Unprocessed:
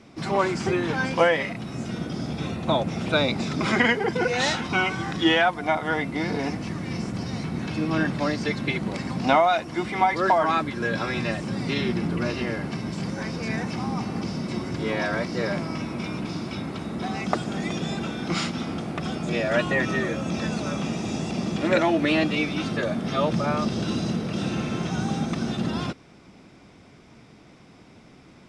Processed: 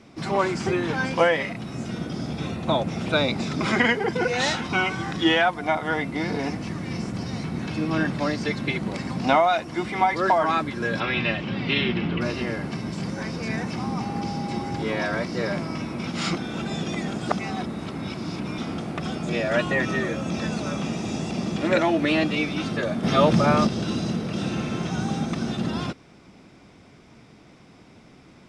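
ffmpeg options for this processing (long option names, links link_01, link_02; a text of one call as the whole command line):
ffmpeg -i in.wav -filter_complex "[0:a]asettb=1/sr,asplit=3[link_01][link_02][link_03];[link_01]atrim=end=11.004[link_04];[link_02]atrim=start=11:end=12.21,asetpts=PTS-STARTPTS,afade=type=in:duration=0.004:curve=qsin,afade=type=out:start_time=1.206:duration=0.004:curve=qsin,lowpass=frequency=3000:width_type=q:width=3.2[link_05];[link_03]atrim=start=12.206[link_06];[link_04][link_05]acrossfade=duration=0.004:curve1=hsin:curve2=qsin[link_07];[link_07][link_06]acrossfade=duration=0.004:curve1=qsin:curve2=hsin,asettb=1/sr,asplit=3[link_08][link_09][link_10];[link_08]atrim=end=14.014[link_11];[link_09]atrim=start=14.01:end=14.82,asetpts=PTS-STARTPTS,afade=type=in:duration=0.004:curve=qsin,afade=type=out:start_time=0.806:duration=0.004:curve=qsin,aeval=exprs='val(0)+0.0224*sin(2*PI*810*n/s)':channel_layout=same[link_12];[link_10]atrim=start=14.816[link_13];[link_11][link_12]acrossfade=duration=0.004:curve1=hsin:curve2=qsin[link_14];[link_14][link_13]acrossfade=duration=0.004:curve1=qsin:curve2=hsin,asettb=1/sr,asplit=3[link_15][link_16][link_17];[link_15]atrim=end=23.034[link_18];[link_16]atrim=start=23.03:end=23.67,asetpts=PTS-STARTPTS,afade=type=in:duration=0.004:curve=qsin,afade=type=out:start_time=0.636:duration=0.004:curve=qsin,acontrast=47[link_19];[link_17]atrim=start=23.666[link_20];[link_18][link_19]acrossfade=duration=0.004:curve1=hsin:curve2=qsin[link_21];[link_21][link_20]acrossfade=duration=0.004:curve1=qsin:curve2=hsin,asplit=3[link_22][link_23][link_24];[link_22]atrim=end=16.072[link_25];[link_23]atrim=start=16.068:end=18.582,asetpts=PTS-STARTPTS,areverse[link_26];[link_24]atrim=start=18.578[link_27];[link_25][link_26]acrossfade=duration=0.004:curve1=hsin:curve2=hsin[link_28];[link_28][link_27]acrossfade=duration=0.004:curve1=hsin:curve2=hsin" out.wav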